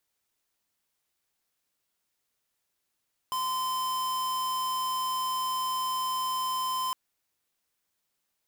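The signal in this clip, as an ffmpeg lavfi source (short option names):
-f lavfi -i "aevalsrc='0.0316*(2*lt(mod(1030*t,1),0.5)-1)':d=3.61:s=44100"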